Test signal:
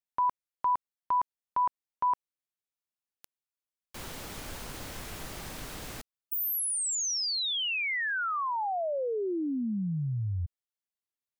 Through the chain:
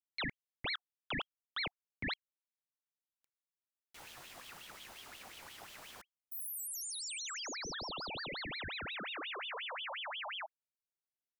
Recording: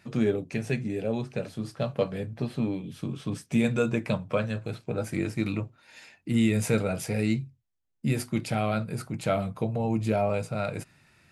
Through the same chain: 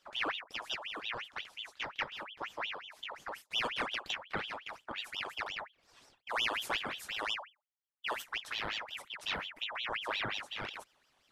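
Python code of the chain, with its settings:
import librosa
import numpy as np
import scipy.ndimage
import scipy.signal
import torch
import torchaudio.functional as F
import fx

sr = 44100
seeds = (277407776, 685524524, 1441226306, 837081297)

y = fx.cheby_harmonics(x, sr, harmonics=(3,), levels_db=(-25,), full_scale_db=-11.5)
y = fx.ring_lfo(y, sr, carrier_hz=2000.0, swing_pct=65, hz=5.6)
y = y * librosa.db_to_amplitude(-7.0)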